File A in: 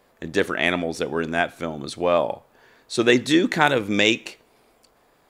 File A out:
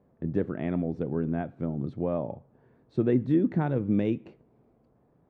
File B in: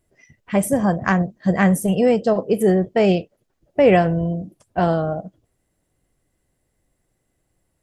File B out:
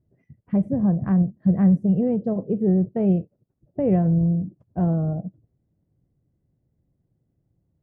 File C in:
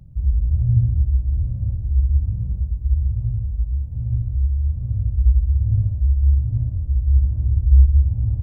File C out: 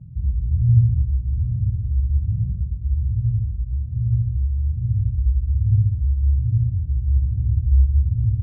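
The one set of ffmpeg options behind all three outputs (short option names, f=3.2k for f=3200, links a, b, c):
-filter_complex "[0:a]aemphasis=mode=reproduction:type=75fm,asplit=2[a][b];[b]acompressor=threshold=-24dB:ratio=6,volume=0dB[c];[a][c]amix=inputs=2:normalize=0,bandpass=f=130:t=q:w=1.2:csg=0"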